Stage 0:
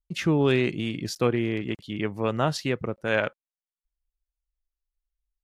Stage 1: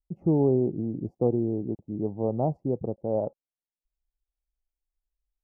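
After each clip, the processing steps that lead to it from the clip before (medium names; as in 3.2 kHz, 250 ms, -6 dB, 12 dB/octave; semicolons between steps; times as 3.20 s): elliptic low-pass 810 Hz, stop band 50 dB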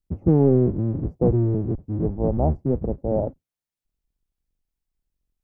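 octave divider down 1 oct, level +3 dB; trim +3 dB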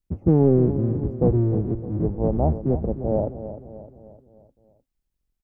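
feedback delay 305 ms, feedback 49%, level -12 dB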